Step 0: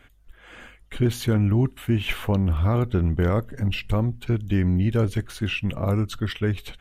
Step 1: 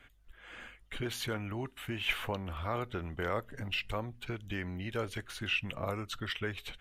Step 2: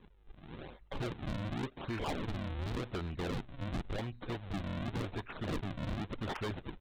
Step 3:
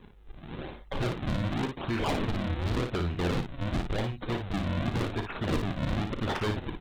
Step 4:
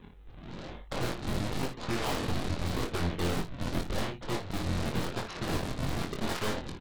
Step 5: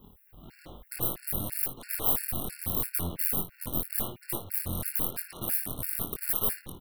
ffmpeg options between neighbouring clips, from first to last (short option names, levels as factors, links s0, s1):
-filter_complex "[0:a]equalizer=f=2300:t=o:w=2.7:g=5,acrossover=split=420|1700[s0][s1][s2];[s0]acompressor=threshold=0.0316:ratio=10[s3];[s3][s1][s2]amix=inputs=3:normalize=0,volume=0.398"
-af "aresample=8000,acrusher=samples=11:mix=1:aa=0.000001:lfo=1:lforange=17.6:lforate=0.9,aresample=44100,asoftclip=type=hard:threshold=0.0178,volume=1.26"
-af "aecho=1:1:35|57:0.224|0.473,volume=2.24"
-filter_complex "[0:a]aeval=exprs='0.0891*(cos(1*acos(clip(val(0)/0.0891,-1,1)))-cos(1*PI/2))+0.0178*(cos(6*acos(clip(val(0)/0.0891,-1,1)))-cos(6*PI/2))+0.0398*(cos(7*acos(clip(val(0)/0.0891,-1,1)))-cos(7*PI/2))':c=same,asplit=2[s0][s1];[s1]adelay=23,volume=0.562[s2];[s0][s2]amix=inputs=2:normalize=0,volume=0.473"
-af "aexciter=amount=16:drive=9.4:freq=10000,afftfilt=real='re*gt(sin(2*PI*3*pts/sr)*(1-2*mod(floor(b*sr/1024/1400),2)),0)':imag='im*gt(sin(2*PI*3*pts/sr)*(1-2*mod(floor(b*sr/1024/1400),2)),0)':win_size=1024:overlap=0.75,volume=0.708"